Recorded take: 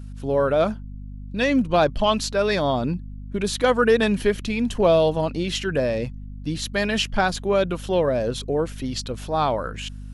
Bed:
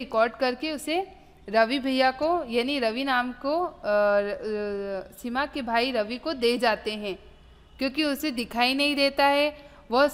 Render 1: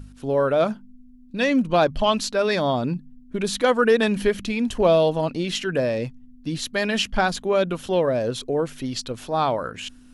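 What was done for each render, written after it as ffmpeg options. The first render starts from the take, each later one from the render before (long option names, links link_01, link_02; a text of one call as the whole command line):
ffmpeg -i in.wav -af "bandreject=frequency=50:width_type=h:width=4,bandreject=frequency=100:width_type=h:width=4,bandreject=frequency=150:width_type=h:width=4,bandreject=frequency=200:width_type=h:width=4" out.wav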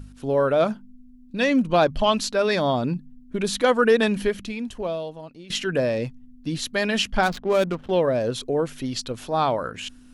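ffmpeg -i in.wav -filter_complex "[0:a]asettb=1/sr,asplit=3[link_01][link_02][link_03];[link_01]atrim=end=7.234[link_04];[link_02]atrim=start=7.23:end=7.91,asetpts=PTS-STARTPTS,afade=type=in:duration=0.004:curve=qsin,afade=type=out:start_time=0.676:duration=0.004:curve=qsin,adynamicsmooth=sensitivity=5:basefreq=710[link_05];[link_03]atrim=start=7.906[link_06];[link_04][link_05]acrossfade=duration=0.004:curve1=hsin:curve2=qsin[link_07];[link_07][link_06]acrossfade=duration=0.004:curve1=qsin:curve2=hsin,asplit=2[link_08][link_09];[link_08]atrim=end=5.5,asetpts=PTS-STARTPTS,afade=type=out:start_time=4.04:duration=1.46:curve=qua:silence=0.133352[link_10];[link_09]atrim=start=5.5,asetpts=PTS-STARTPTS,afade=type=in:duration=0.004:curve=hsin:silence=0.133352[link_11];[link_10][link_11]concat=n=2:v=0:a=1" out.wav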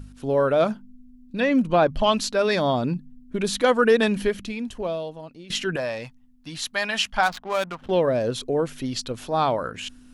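ffmpeg -i in.wav -filter_complex "[0:a]asettb=1/sr,asplit=3[link_01][link_02][link_03];[link_01]atrim=end=1.404[link_04];[link_02]atrim=start=1.4:end=2.03,asetpts=PTS-STARTPTS,afade=type=in:duration=0.004:curve=qsin,afade=type=out:start_time=0.626:duration=0.004:curve=qsin,acrossover=split=2800[link_05][link_06];[link_06]acompressor=threshold=-43dB:ratio=4:attack=1:release=60[link_07];[link_05][link_07]amix=inputs=2:normalize=0[link_08];[link_03]atrim=start=2.026[link_09];[link_04][link_08]acrossfade=duration=0.004:curve1=hsin:curve2=qsin[link_10];[link_10][link_09]acrossfade=duration=0.004:curve1=qsin:curve2=hsin,asettb=1/sr,asplit=3[link_11][link_12][link_13];[link_11]atrim=end=5.764[link_14];[link_12]atrim=start=5.76:end=7.82,asetpts=PTS-STARTPTS,afade=type=in:duration=0.004:curve=qsin,afade=type=out:start_time=2.056:duration=0.004:curve=qsin,lowshelf=frequency=590:width_type=q:width=1.5:gain=-9.5[link_15];[link_13]atrim=start=7.816[link_16];[link_14][link_15]acrossfade=duration=0.004:curve1=hsin:curve2=qsin[link_17];[link_17][link_16]acrossfade=duration=0.004:curve1=qsin:curve2=hsin" out.wav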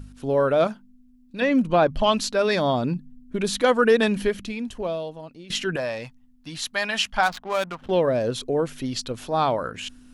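ffmpeg -i in.wav -filter_complex "[0:a]asettb=1/sr,asplit=3[link_01][link_02][link_03];[link_01]atrim=end=0.674[link_04];[link_02]atrim=start=0.67:end=1.42,asetpts=PTS-STARTPTS,afade=type=in:duration=0.004:curve=qsin,afade=type=out:start_time=0.746:duration=0.004:curve=qsin,lowshelf=frequency=450:gain=-7.5[link_05];[link_03]atrim=start=1.416[link_06];[link_04][link_05]acrossfade=duration=0.004:curve1=hsin:curve2=qsin[link_07];[link_07][link_06]acrossfade=duration=0.004:curve1=qsin:curve2=hsin" out.wav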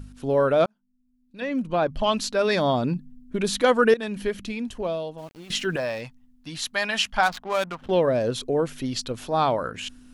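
ffmpeg -i in.wav -filter_complex "[0:a]asplit=3[link_01][link_02][link_03];[link_01]afade=type=out:start_time=5.17:duration=0.02[link_04];[link_02]aeval=exprs='val(0)*gte(abs(val(0)),0.00447)':channel_layout=same,afade=type=in:start_time=5.17:duration=0.02,afade=type=out:start_time=6:duration=0.02[link_05];[link_03]afade=type=in:start_time=6:duration=0.02[link_06];[link_04][link_05][link_06]amix=inputs=3:normalize=0,asplit=3[link_07][link_08][link_09];[link_07]atrim=end=0.66,asetpts=PTS-STARTPTS,afade=type=out:start_time=0.656:duration=0.004:curve=hsin[link_10];[link_08]atrim=start=0.66:end=3.94,asetpts=PTS-STARTPTS,afade=type=in:duration=1.93,afade=type=out:start_time=3.276:duration=0.004:curve=hsin:silence=0.158489[link_11];[link_09]atrim=start=3.94,asetpts=PTS-STARTPTS,afade=type=in:duration=0.56:silence=0.158489[link_12];[link_10][link_11][link_12]concat=n=3:v=0:a=1" out.wav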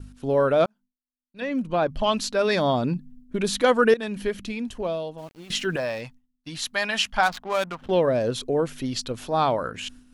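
ffmpeg -i in.wav -af "agate=range=-33dB:threshold=-42dB:ratio=3:detection=peak" out.wav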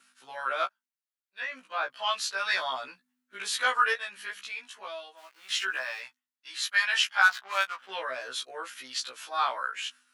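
ffmpeg -i in.wav -af "highpass=frequency=1400:width_type=q:width=1.7,afftfilt=real='re*1.73*eq(mod(b,3),0)':imag='im*1.73*eq(mod(b,3),0)':win_size=2048:overlap=0.75" out.wav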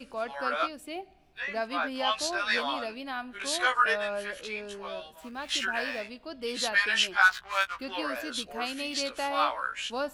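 ffmpeg -i in.wav -i bed.wav -filter_complex "[1:a]volume=-11.5dB[link_01];[0:a][link_01]amix=inputs=2:normalize=0" out.wav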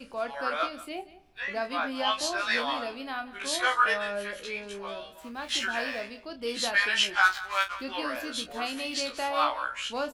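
ffmpeg -i in.wav -filter_complex "[0:a]asplit=2[link_01][link_02];[link_02]adelay=30,volume=-9dB[link_03];[link_01][link_03]amix=inputs=2:normalize=0,aecho=1:1:181:0.133" out.wav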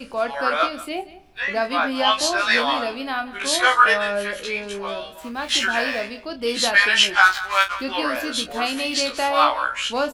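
ffmpeg -i in.wav -af "volume=9dB,alimiter=limit=-3dB:level=0:latency=1" out.wav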